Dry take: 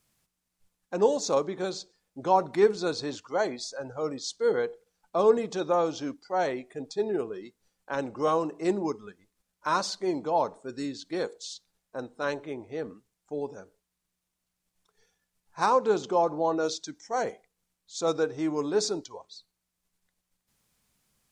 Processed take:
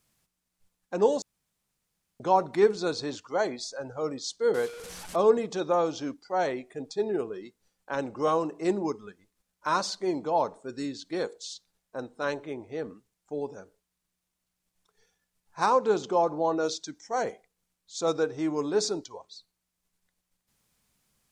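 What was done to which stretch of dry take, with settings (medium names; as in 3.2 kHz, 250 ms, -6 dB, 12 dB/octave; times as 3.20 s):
1.22–2.20 s: room tone
4.54–5.16 s: one-bit delta coder 64 kbps, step -36 dBFS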